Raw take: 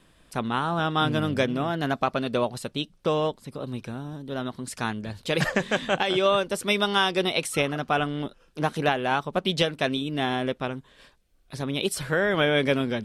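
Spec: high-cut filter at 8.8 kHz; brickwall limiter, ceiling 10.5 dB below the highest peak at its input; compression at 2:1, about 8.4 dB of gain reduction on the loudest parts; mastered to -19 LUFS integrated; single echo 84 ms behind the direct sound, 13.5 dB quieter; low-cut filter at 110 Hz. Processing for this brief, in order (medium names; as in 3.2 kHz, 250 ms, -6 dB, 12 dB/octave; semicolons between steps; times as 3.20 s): high-pass 110 Hz; low-pass 8.8 kHz; compression 2:1, threshold -34 dBFS; peak limiter -26 dBFS; delay 84 ms -13.5 dB; trim +18 dB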